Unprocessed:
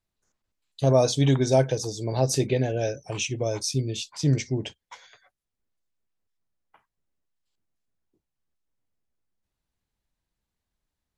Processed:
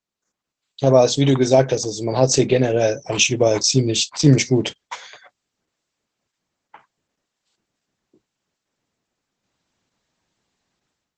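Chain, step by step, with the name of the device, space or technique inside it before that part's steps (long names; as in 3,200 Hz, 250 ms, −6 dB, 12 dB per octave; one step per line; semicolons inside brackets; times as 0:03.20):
video call (high-pass filter 160 Hz 12 dB per octave; automatic gain control gain up to 15.5 dB; Opus 12 kbit/s 48,000 Hz)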